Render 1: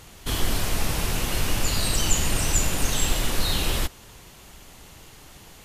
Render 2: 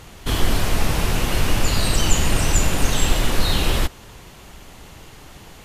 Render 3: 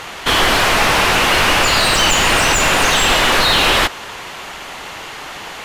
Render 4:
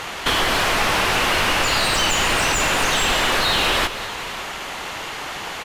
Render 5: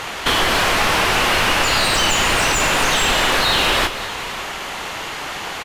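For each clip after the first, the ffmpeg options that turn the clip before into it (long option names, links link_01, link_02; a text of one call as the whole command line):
ffmpeg -i in.wav -af "highshelf=frequency=4100:gain=-7,volume=6dB" out.wav
ffmpeg -i in.wav -filter_complex "[0:a]tiltshelf=frequency=760:gain=-5.5,asplit=2[link_01][link_02];[link_02]highpass=frequency=720:poles=1,volume=20dB,asoftclip=type=tanh:threshold=-2dB[link_03];[link_01][link_03]amix=inputs=2:normalize=0,lowpass=frequency=1400:poles=1,volume=-6dB,volume=4.5dB" out.wav
ffmpeg -i in.wav -af "acompressor=threshold=-19dB:ratio=2.5,aecho=1:1:192|558:0.224|0.141" out.wav
ffmpeg -i in.wav -filter_complex "[0:a]asplit=2[link_01][link_02];[link_02]adelay=32,volume=-11.5dB[link_03];[link_01][link_03]amix=inputs=2:normalize=0,volume=2dB" out.wav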